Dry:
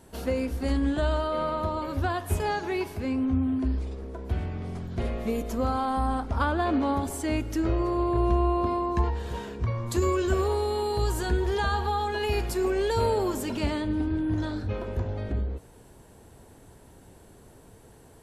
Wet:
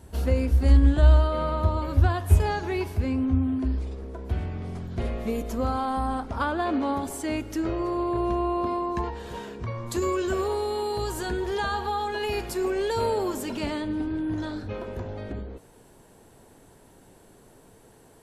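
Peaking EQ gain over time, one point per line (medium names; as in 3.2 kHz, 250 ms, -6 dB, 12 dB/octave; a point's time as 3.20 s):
peaking EQ 65 Hz 1.6 oct
2.98 s +13 dB
3.59 s +1 dB
5.74 s +1 dB
6.52 s -9 dB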